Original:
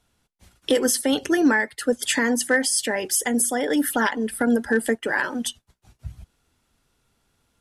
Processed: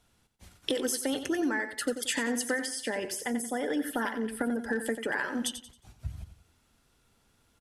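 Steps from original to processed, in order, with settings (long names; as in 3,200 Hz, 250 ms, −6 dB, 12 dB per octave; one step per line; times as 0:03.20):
downward compressor 4 to 1, threshold −29 dBFS, peak gain reduction 13 dB
0:02.66–0:04.58: high-shelf EQ 4,900 Hz −9 dB
repeating echo 90 ms, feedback 34%, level −10 dB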